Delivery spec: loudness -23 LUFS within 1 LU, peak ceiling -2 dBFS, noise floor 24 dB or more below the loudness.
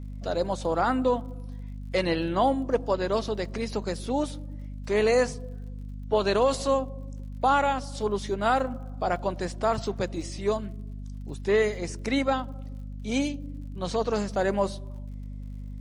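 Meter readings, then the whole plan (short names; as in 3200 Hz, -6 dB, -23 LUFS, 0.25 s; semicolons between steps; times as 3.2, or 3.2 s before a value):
ticks 52/s; hum 50 Hz; harmonics up to 250 Hz; hum level -35 dBFS; loudness -27.5 LUFS; peak -12.0 dBFS; loudness target -23.0 LUFS
-> de-click; notches 50/100/150/200/250 Hz; gain +4.5 dB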